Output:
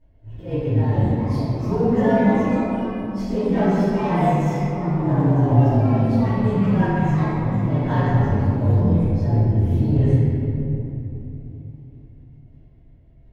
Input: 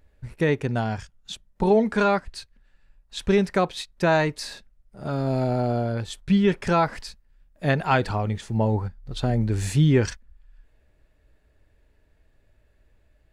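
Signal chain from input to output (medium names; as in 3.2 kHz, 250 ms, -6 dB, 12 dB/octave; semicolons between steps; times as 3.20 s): frequency axis rescaled in octaves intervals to 112%; RIAA curve playback; waveshaping leveller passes 1; compression 4:1, threshold -26 dBFS, peak gain reduction 17.5 dB; slow attack 130 ms; comb of notches 1.2 kHz; ever faster or slower copies 520 ms, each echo +3 st, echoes 3, each echo -6 dB; simulated room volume 130 m³, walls hard, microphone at 2.6 m; trim -6 dB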